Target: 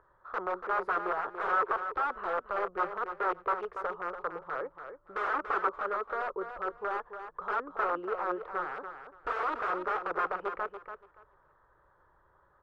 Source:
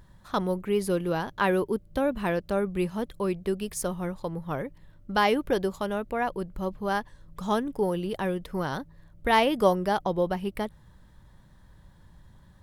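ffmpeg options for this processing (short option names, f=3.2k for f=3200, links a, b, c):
-filter_complex "[0:a]acrossover=split=140[a][b];[b]aeval=exprs='(mod(14.1*val(0)+1,2)-1)/14.1':c=same[c];[a][c]amix=inputs=2:normalize=0,lowpass=f=1.3k:t=q:w=5.4,lowshelf=f=300:t=q:w=3:g=-11.5,aecho=1:1:286|572|858:0.355|0.0674|0.0128,volume=-8dB"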